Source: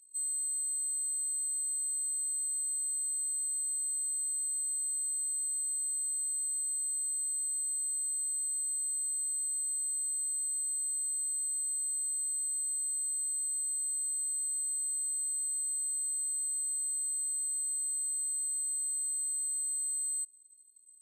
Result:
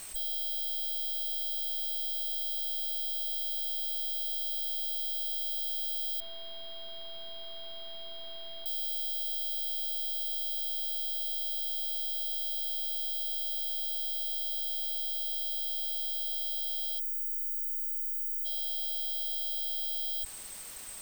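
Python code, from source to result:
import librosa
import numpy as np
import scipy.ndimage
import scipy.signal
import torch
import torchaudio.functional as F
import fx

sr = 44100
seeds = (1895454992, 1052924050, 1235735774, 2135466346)

y = fx.tracing_dist(x, sr, depth_ms=0.075)
y = fx.quant_dither(y, sr, seeds[0], bits=10, dither='triangular')
y = fx.air_absorb(y, sr, metres=420.0, at=(6.2, 8.66))
y = fx.spec_erase(y, sr, start_s=16.99, length_s=1.46, low_hz=660.0, high_hz=6000.0)
y = fx.env_flatten(y, sr, amount_pct=50)
y = F.gain(torch.from_numpy(y), 2.5).numpy()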